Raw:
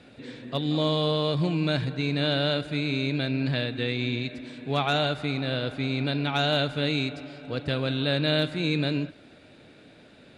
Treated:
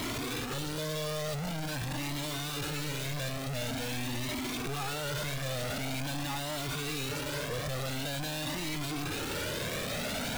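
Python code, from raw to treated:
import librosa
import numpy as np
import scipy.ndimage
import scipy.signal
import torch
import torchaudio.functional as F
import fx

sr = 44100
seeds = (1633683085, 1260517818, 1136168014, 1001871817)

y = np.sign(x) * np.sqrt(np.mean(np.square(x)))
y = fx.comb_cascade(y, sr, direction='rising', hz=0.46)
y = y * librosa.db_to_amplitude(-2.5)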